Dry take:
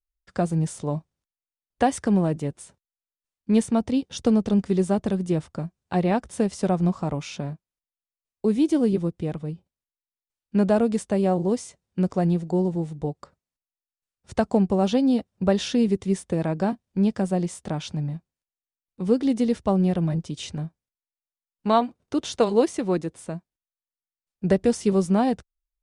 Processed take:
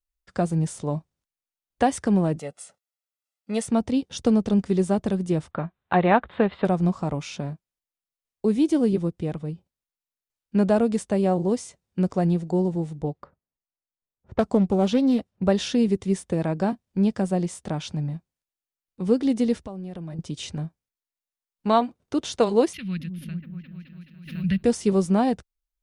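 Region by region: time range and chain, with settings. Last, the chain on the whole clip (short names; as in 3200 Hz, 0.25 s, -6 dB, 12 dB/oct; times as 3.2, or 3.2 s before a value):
2.39–3.67 Bessel high-pass 390 Hz + comb 1.5 ms, depth 70%
5.51–6.65 elliptic low-pass 3800 Hz + bell 1300 Hz +10.5 dB 2.4 oct
13.02–15.43 low-pass opened by the level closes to 930 Hz, open at -20.5 dBFS + Doppler distortion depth 0.23 ms
19.58–20.19 bell 110 Hz -11.5 dB 0.42 oct + compressor 10:1, threshold -32 dBFS
22.73–24.63 EQ curve 200 Hz 0 dB, 290 Hz -21 dB, 430 Hz -27 dB, 860 Hz -27 dB, 1500 Hz -6 dB, 2900 Hz +6 dB, 4900 Hz -6 dB, 8200 Hz -29 dB, 12000 Hz +12 dB + repeats that get brighter 0.213 s, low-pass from 400 Hz, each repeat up 1 oct, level -6 dB + backwards sustainer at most 100 dB/s
whole clip: dry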